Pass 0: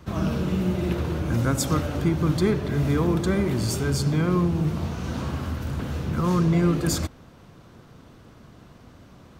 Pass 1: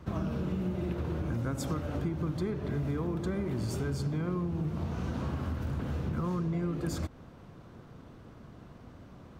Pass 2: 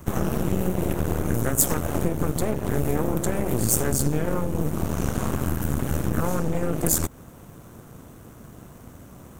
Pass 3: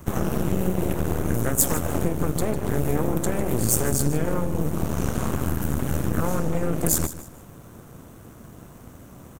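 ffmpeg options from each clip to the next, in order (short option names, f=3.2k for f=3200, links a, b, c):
-af "highshelf=f=2.4k:g=-8.5,acompressor=threshold=-28dB:ratio=6,volume=-1.5dB"
-af "aeval=exprs='0.1*(cos(1*acos(clip(val(0)/0.1,-1,1)))-cos(1*PI/2))+0.0447*(cos(4*acos(clip(val(0)/0.1,-1,1)))-cos(4*PI/2))':c=same,aexciter=amount=5.7:drive=8.1:freq=6.6k,volume=5.5dB"
-af "aecho=1:1:151|302|453:0.2|0.0579|0.0168"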